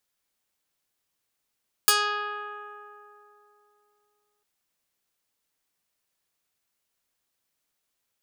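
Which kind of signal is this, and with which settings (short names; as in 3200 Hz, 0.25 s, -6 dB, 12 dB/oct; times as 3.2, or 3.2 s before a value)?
plucked string G#4, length 2.55 s, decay 3.20 s, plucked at 0.21, medium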